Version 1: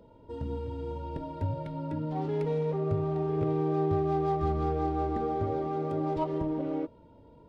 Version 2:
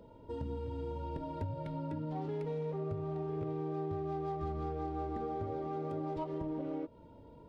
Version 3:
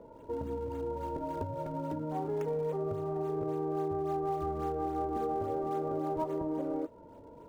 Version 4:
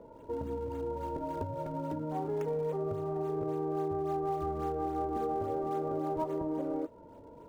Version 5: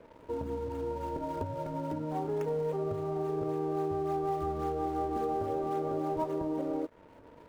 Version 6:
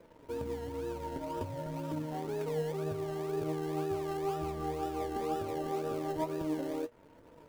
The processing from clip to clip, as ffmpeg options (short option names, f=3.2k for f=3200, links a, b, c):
-af "acompressor=threshold=-36dB:ratio=4"
-filter_complex "[0:a]bass=f=250:g=-9,treble=f=4k:g=9,acrossover=split=1600[a][b];[b]acrusher=samples=41:mix=1:aa=0.000001:lfo=1:lforange=65.6:lforate=3.6[c];[a][c]amix=inputs=2:normalize=0,volume=6.5dB"
-af anull
-af "aeval=exprs='sgn(val(0))*max(abs(val(0))-0.00141,0)':c=same,volume=1.5dB"
-filter_complex "[0:a]asplit=2[a][b];[b]acrusher=samples=29:mix=1:aa=0.000001:lfo=1:lforange=17.4:lforate=2,volume=-9.5dB[c];[a][c]amix=inputs=2:normalize=0,flanger=delay=5.8:depth=2.7:regen=66:speed=1.1:shape=sinusoidal,acrusher=bits=7:mode=log:mix=0:aa=0.000001"